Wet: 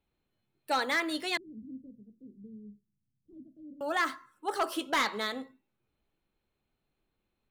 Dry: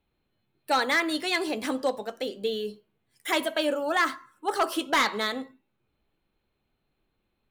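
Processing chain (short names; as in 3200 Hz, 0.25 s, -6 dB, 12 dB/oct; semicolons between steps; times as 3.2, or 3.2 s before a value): 1.37–3.81 inverse Chebyshev low-pass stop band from 780 Hz, stop band 60 dB; gain -5 dB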